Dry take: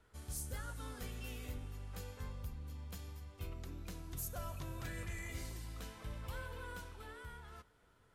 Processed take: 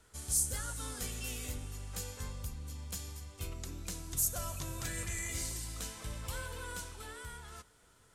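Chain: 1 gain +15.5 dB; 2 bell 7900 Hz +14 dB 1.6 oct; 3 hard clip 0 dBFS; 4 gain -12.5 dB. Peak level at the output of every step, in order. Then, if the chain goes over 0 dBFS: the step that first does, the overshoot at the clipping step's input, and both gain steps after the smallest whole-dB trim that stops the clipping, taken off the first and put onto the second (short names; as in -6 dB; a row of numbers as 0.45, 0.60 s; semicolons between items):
-17.0, -5.5, -5.5, -18.0 dBFS; no overload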